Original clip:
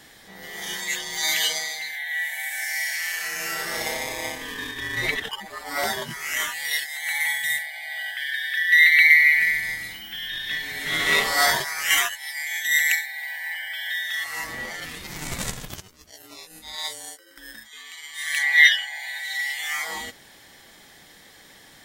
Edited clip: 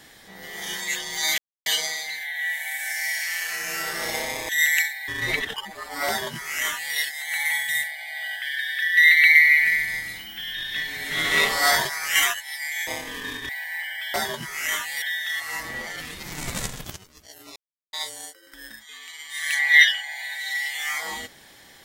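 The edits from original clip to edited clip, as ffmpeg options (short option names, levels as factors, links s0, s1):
-filter_complex "[0:a]asplit=10[s0][s1][s2][s3][s4][s5][s6][s7][s8][s9];[s0]atrim=end=1.38,asetpts=PTS-STARTPTS,afade=t=out:st=1.376:d=0.004:c=hsin,apad=pad_dur=0.28[s10];[s1]atrim=start=1.38:end=4.212,asetpts=PTS-STARTPTS,afade=t=in:d=0.004:c=hsin[s11];[s2]atrim=start=12.618:end=13.212[s12];[s3]atrim=start=4.828:end=12.622[s13];[s4]atrim=start=4.208:end=4.832[s14];[s5]atrim=start=13.208:end=13.862[s15];[s6]atrim=start=5.818:end=6.702[s16];[s7]atrim=start=13.858:end=16.4,asetpts=PTS-STARTPTS,afade=t=out:st=2.538:d=0.004:c=hsin[s17];[s8]atrim=start=16.4:end=16.77,asetpts=PTS-STARTPTS,volume=0[s18];[s9]atrim=start=16.77,asetpts=PTS-STARTPTS,afade=t=in:d=0.004:c=hsin[s19];[s10][s11]concat=n=2:v=0:a=1[s20];[s20][s12]acrossfade=d=0.004:c1=hsin:c2=hsin[s21];[s21][s13]acrossfade=d=0.004:c1=hsin:c2=hsin[s22];[s22][s14]acrossfade=d=0.004:c1=hsin:c2=hsin[s23];[s23][s15]acrossfade=d=0.004:c1=hsin:c2=hsin[s24];[s24][s16]acrossfade=d=0.004:c1=hsin:c2=hsin[s25];[s17][s18][s19]concat=n=3:v=0:a=1[s26];[s25][s26]acrossfade=d=0.004:c1=hsin:c2=hsin"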